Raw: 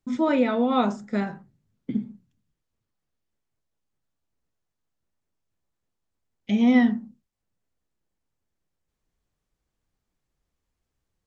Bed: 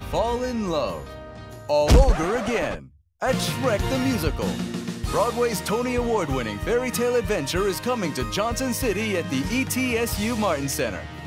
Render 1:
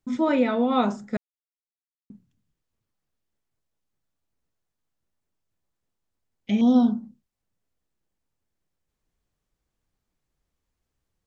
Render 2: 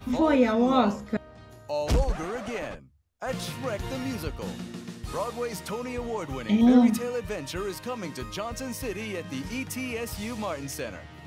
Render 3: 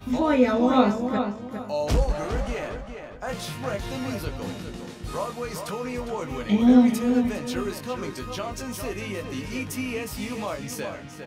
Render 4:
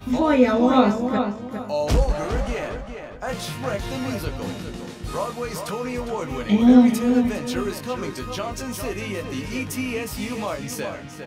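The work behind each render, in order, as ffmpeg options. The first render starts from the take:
-filter_complex "[0:a]asettb=1/sr,asplit=3[a][b][c];[a]atrim=end=6.614[d];[b]atrim=start=6.61:end=7.03,asetpts=PTS-STARTPTS,afade=t=in:d=0.004:c=qsin,afade=t=out:st=0.416:d=0.004:c=qsin,asuperstop=centerf=2200:order=20:qfactor=1.3[e];[c]atrim=start=7.026[f];[d][e]acrossfade=d=0.004:c1=hsin:c2=qsin[g];[g][f]acrossfade=d=0.004:c1=qsin:c2=hsin,asplit=3[h][i][j];[h]atrim=end=1.17,asetpts=PTS-STARTPTS,afade=t=out:st=1.166:d=0.004:c=hsin[k];[i]atrim=start=1.17:end=2.1,asetpts=PTS-STARTPTS,volume=0[l];[j]atrim=start=2.1,asetpts=PTS-STARTPTS,afade=t=in:d=0.004:c=hsin[m];[k][l][m]concat=n=3:v=0:a=1"
-filter_complex "[1:a]volume=-9dB[a];[0:a][a]amix=inputs=2:normalize=0"
-filter_complex "[0:a]asplit=2[a][b];[b]adelay=20,volume=-6.5dB[c];[a][c]amix=inputs=2:normalize=0,asplit=2[d][e];[e]adelay=405,lowpass=f=3.8k:p=1,volume=-7dB,asplit=2[f][g];[g]adelay=405,lowpass=f=3.8k:p=1,volume=0.3,asplit=2[h][i];[i]adelay=405,lowpass=f=3.8k:p=1,volume=0.3,asplit=2[j][k];[k]adelay=405,lowpass=f=3.8k:p=1,volume=0.3[l];[d][f][h][j][l]amix=inputs=5:normalize=0"
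-af "volume=3dB,alimiter=limit=-2dB:level=0:latency=1"

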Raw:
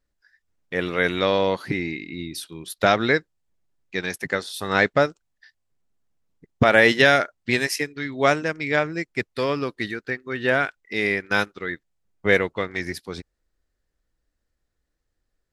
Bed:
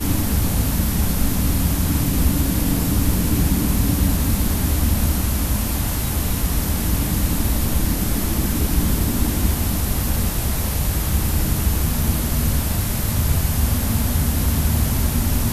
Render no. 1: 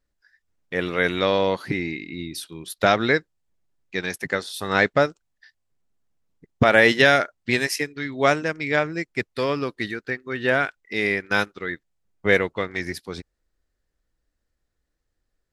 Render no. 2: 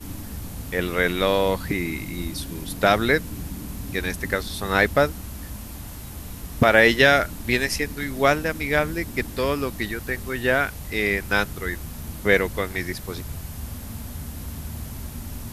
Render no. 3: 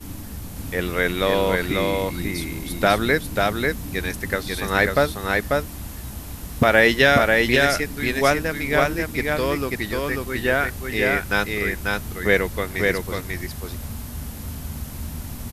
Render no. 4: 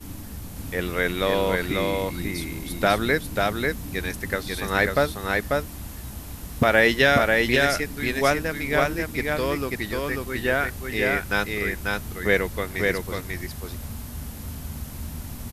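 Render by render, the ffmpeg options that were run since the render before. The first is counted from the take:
-af anull
-filter_complex "[1:a]volume=-15dB[a];[0:a][a]amix=inputs=2:normalize=0"
-af "aecho=1:1:542:0.708"
-af "volume=-2.5dB"

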